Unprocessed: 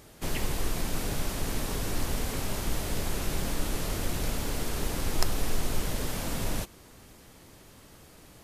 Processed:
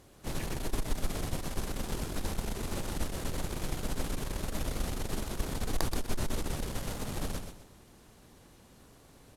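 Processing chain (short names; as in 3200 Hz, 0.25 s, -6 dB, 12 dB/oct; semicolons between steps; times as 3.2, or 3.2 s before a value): feedback echo 0.114 s, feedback 30%, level -6 dB; added harmonics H 8 -19 dB, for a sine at -3.5 dBFS; in parallel at -6 dB: sample-and-hold 14×; on the sum: varispeed -10%; gain -8 dB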